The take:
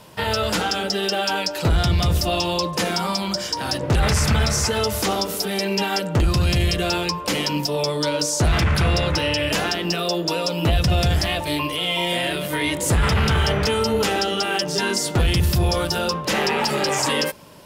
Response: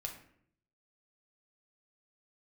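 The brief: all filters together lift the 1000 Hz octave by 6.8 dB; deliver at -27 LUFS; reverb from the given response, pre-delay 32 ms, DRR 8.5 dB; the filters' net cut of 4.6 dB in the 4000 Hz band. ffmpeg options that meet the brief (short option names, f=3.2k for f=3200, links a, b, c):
-filter_complex "[0:a]equalizer=f=1k:t=o:g=9,equalizer=f=4k:t=o:g=-7.5,asplit=2[a][b];[1:a]atrim=start_sample=2205,adelay=32[c];[b][c]afir=irnorm=-1:irlink=0,volume=-7dB[d];[a][d]amix=inputs=2:normalize=0,volume=-7.5dB"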